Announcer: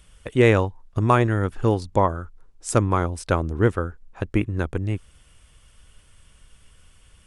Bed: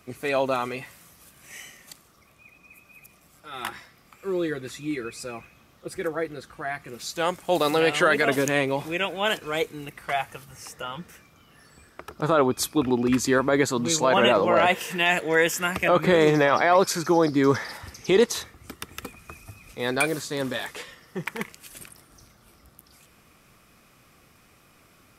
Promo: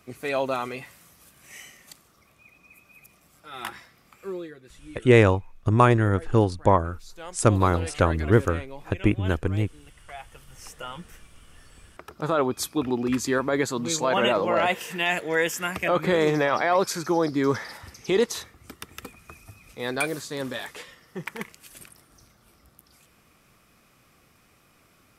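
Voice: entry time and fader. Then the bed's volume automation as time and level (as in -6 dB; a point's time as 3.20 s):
4.70 s, +0.5 dB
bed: 4.24 s -2 dB
4.53 s -15 dB
10.14 s -15 dB
10.63 s -3 dB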